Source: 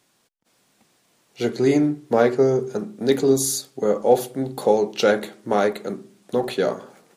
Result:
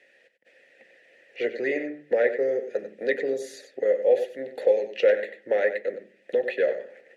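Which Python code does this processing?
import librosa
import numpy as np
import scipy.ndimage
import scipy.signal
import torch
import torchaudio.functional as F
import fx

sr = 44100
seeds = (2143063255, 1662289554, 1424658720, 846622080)

y = x + 10.0 ** (-10.0 / 20.0) * np.pad(x, (int(94 * sr / 1000.0), 0))[:len(x)]
y = fx.hpss(y, sr, part='percussive', gain_db=6)
y = fx.vowel_filter(y, sr, vowel='e')
y = fx.peak_eq(y, sr, hz=2000.0, db=11.5, octaves=0.57)
y = fx.hum_notches(y, sr, base_hz=50, count=4)
y = fx.band_squash(y, sr, depth_pct=40)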